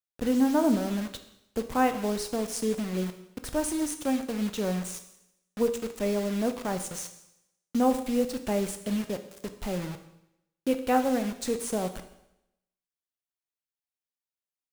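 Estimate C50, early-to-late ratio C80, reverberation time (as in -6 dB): 11.0 dB, 13.5 dB, 0.85 s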